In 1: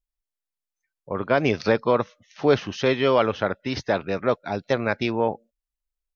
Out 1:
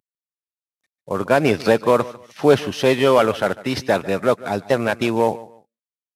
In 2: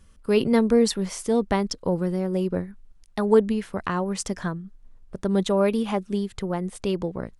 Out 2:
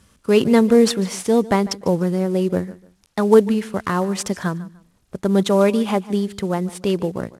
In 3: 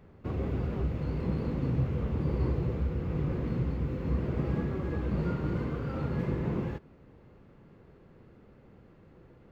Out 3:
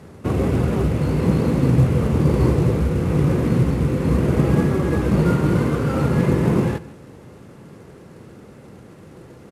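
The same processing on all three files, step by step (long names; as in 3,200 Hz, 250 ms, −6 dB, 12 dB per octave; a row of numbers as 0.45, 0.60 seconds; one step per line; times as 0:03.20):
variable-slope delta modulation 64 kbit/s
high-pass filter 87 Hz 12 dB per octave
repeating echo 148 ms, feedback 26%, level −19 dB
loudness normalisation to −19 LKFS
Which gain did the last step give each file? +5.0, +5.5, +14.5 decibels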